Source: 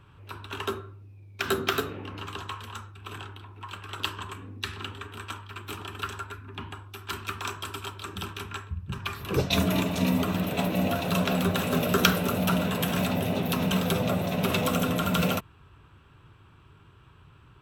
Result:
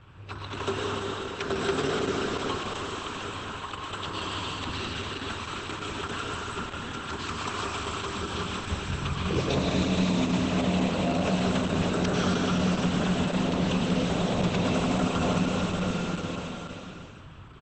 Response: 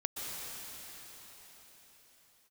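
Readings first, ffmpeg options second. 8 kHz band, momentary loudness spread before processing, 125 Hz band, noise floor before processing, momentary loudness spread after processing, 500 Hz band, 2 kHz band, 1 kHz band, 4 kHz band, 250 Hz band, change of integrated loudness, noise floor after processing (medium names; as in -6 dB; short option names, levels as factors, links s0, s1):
-1.0 dB, 15 LU, +1.0 dB, -55 dBFS, 9 LU, +1.5 dB, -0.5 dB, +1.0 dB, 0.0 dB, +1.5 dB, 0.0 dB, -43 dBFS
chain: -filter_complex "[1:a]atrim=start_sample=2205,asetrate=57330,aresample=44100[s0];[0:a][s0]afir=irnorm=-1:irlink=0,acrossover=split=1100|3300[s1][s2][s3];[s1]acompressor=threshold=0.0282:ratio=4[s4];[s2]acompressor=threshold=0.00501:ratio=4[s5];[s3]acompressor=threshold=0.00501:ratio=4[s6];[s4][s5][s6]amix=inputs=3:normalize=0,asplit=7[s7][s8][s9][s10][s11][s12][s13];[s8]adelay=152,afreqshift=37,volume=0.2[s14];[s9]adelay=304,afreqshift=74,volume=0.11[s15];[s10]adelay=456,afreqshift=111,volume=0.0603[s16];[s11]adelay=608,afreqshift=148,volume=0.0331[s17];[s12]adelay=760,afreqshift=185,volume=0.0182[s18];[s13]adelay=912,afreqshift=222,volume=0.01[s19];[s7][s14][s15][s16][s17][s18][s19]amix=inputs=7:normalize=0,volume=2.24" -ar 48000 -c:a libopus -b:a 10k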